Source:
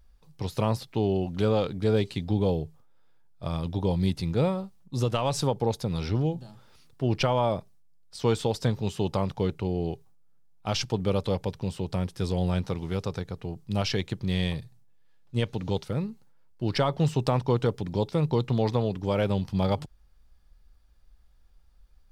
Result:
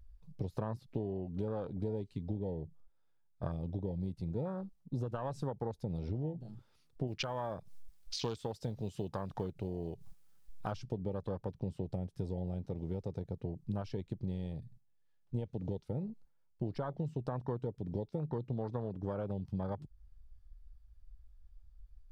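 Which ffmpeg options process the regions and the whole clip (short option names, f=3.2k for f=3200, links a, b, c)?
-filter_complex "[0:a]asettb=1/sr,asplit=3[a][b][c];[a]atrim=end=7.074[d];[b]atrim=start=7.07:end=10.72,asetpts=PTS-STARTPTS,afade=t=in:d=0.004:c=qsin,afade=t=out:st=3.646:d=0.004:c=qsin,tiltshelf=f=1.5k:g=-5,acompressor=mode=upward:threshold=-32dB:ratio=2.5:attack=3.2:release=140:knee=2.83:detection=peak,acrusher=bits=6:mode=log:mix=0:aa=0.000001[e];[c]atrim=start=10.716[f];[d][e]acrossfade=d=0.004:c1=hsin:c2=qsin[g];[g][f]acrossfade=d=0.004:c1=qsin:c2=hsin,acompressor=threshold=-36dB:ratio=12,afwtdn=0.00631,volume=2.5dB"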